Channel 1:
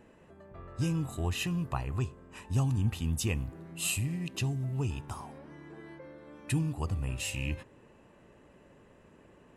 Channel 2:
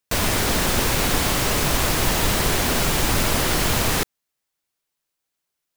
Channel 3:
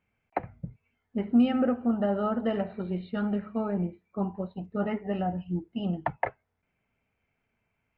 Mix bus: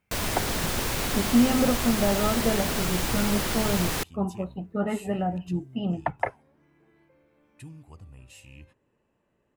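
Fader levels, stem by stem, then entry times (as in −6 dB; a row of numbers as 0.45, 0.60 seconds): −14.5, −7.5, +2.0 decibels; 1.10, 0.00, 0.00 seconds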